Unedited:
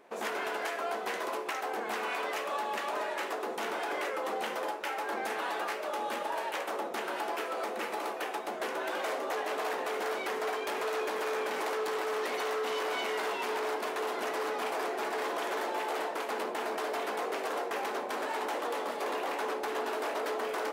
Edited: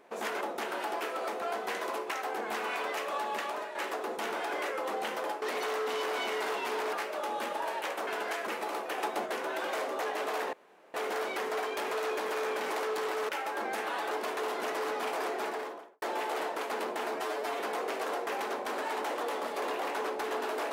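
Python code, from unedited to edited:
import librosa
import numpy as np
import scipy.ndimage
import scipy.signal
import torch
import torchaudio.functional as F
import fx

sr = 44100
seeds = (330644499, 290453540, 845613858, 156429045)

y = fx.studio_fade_out(x, sr, start_s=14.97, length_s=0.64)
y = fx.edit(y, sr, fx.swap(start_s=0.41, length_s=0.4, other_s=6.77, other_length_s=1.01),
    fx.fade_out_to(start_s=2.82, length_s=0.32, floor_db=-8.5),
    fx.swap(start_s=4.81, length_s=0.82, other_s=12.19, other_length_s=1.51),
    fx.clip_gain(start_s=8.29, length_s=0.28, db=3.5),
    fx.insert_room_tone(at_s=9.84, length_s=0.41),
    fx.stretch_span(start_s=16.74, length_s=0.3, factor=1.5), tone=tone)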